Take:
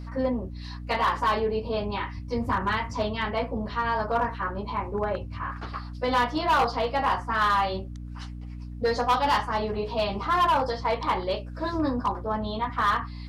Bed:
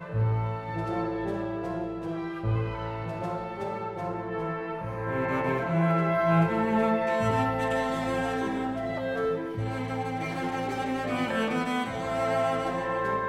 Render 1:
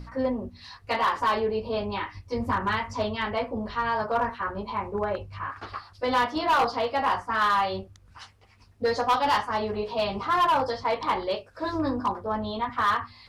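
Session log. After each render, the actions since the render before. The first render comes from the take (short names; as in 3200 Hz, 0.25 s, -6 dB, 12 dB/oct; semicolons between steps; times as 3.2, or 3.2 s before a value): de-hum 60 Hz, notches 5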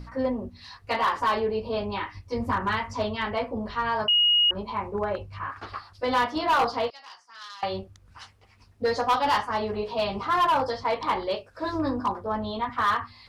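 4.08–4.51 bleep 2880 Hz -17 dBFS; 6.9–7.63 band-pass 5200 Hz, Q 3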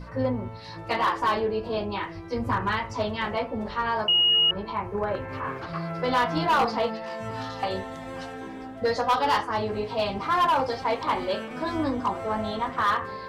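add bed -8.5 dB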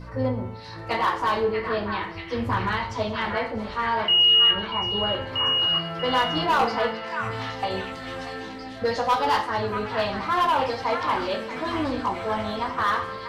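on a send: delay with a stepping band-pass 0.637 s, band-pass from 1700 Hz, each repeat 0.7 oct, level -3 dB; on the sum: plate-style reverb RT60 0.54 s, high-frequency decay 0.9×, DRR 7 dB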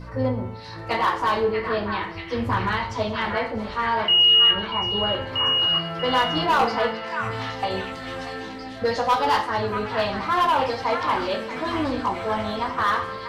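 gain +1.5 dB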